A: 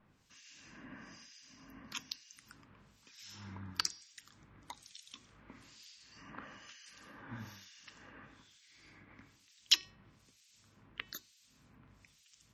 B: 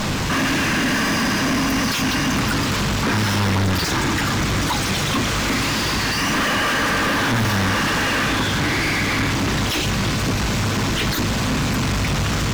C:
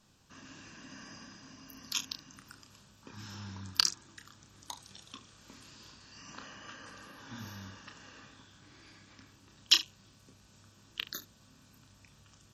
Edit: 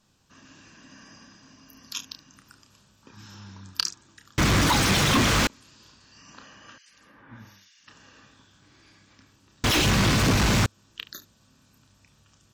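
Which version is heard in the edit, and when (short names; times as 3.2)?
C
4.38–5.47 from B
6.78–7.88 from A
9.64–10.66 from B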